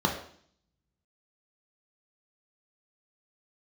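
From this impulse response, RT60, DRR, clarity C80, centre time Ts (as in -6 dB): 0.55 s, 0.5 dB, 10.5 dB, 24 ms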